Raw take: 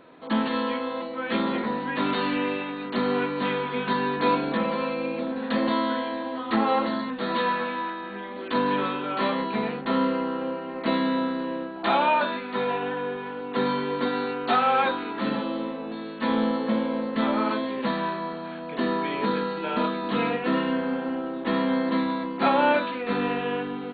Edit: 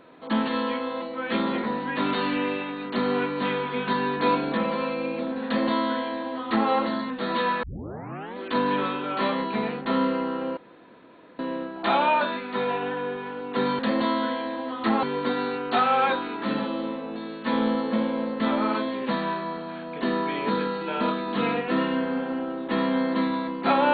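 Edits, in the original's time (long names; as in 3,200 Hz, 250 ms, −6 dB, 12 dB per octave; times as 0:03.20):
0:05.46–0:06.70: duplicate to 0:13.79
0:07.63: tape start 0.73 s
0:10.57–0:11.39: fill with room tone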